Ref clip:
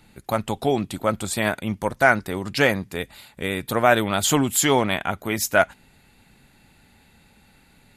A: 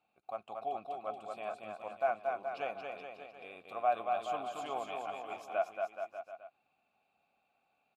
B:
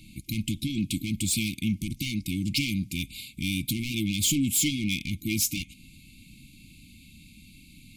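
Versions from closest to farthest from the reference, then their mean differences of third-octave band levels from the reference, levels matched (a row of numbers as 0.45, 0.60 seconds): A, B; 11.0, 15.0 decibels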